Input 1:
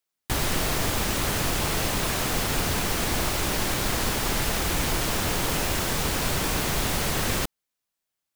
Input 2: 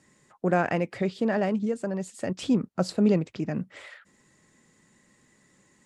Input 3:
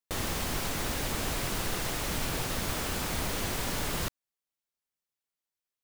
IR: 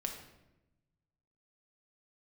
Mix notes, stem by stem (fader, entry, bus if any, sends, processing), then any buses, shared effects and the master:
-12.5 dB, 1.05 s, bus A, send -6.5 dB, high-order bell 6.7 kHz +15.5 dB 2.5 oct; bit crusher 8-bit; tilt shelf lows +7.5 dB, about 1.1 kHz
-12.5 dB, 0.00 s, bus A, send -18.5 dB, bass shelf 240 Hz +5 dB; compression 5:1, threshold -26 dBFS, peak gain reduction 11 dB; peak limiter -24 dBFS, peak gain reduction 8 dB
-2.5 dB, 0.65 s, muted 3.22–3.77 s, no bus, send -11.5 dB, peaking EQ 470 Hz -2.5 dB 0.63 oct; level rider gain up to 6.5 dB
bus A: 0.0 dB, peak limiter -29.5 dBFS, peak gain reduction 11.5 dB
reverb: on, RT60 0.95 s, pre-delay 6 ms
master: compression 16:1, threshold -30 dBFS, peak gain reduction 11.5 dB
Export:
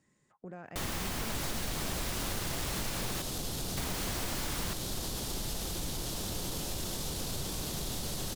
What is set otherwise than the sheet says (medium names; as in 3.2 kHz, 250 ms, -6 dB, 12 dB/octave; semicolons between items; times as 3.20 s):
stem 3: missing level rider gain up to 6.5 dB; reverb return -7.5 dB